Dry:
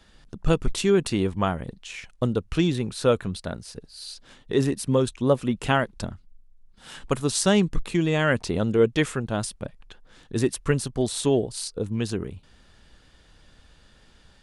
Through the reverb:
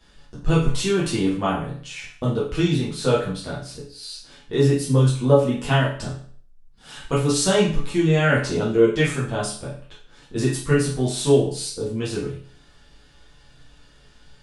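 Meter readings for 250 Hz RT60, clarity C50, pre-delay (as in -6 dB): 0.50 s, 4.5 dB, 7 ms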